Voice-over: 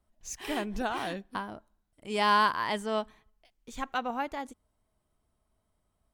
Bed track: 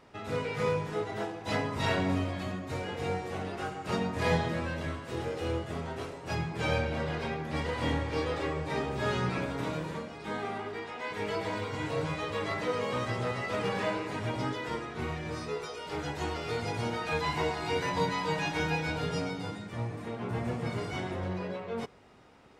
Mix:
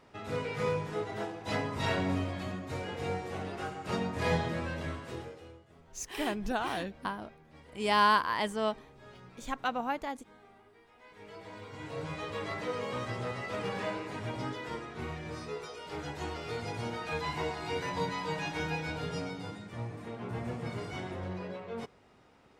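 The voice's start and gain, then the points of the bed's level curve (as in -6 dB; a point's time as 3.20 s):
5.70 s, -0.5 dB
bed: 5.08 s -2 dB
5.58 s -22.5 dB
10.79 s -22.5 dB
12.20 s -4 dB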